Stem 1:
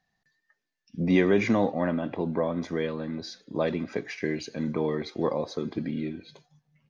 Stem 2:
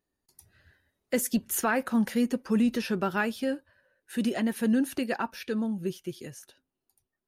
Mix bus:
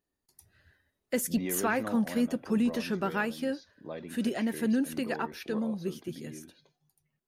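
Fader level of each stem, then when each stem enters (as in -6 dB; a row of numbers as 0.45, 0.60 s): -13.5, -2.5 dB; 0.30, 0.00 s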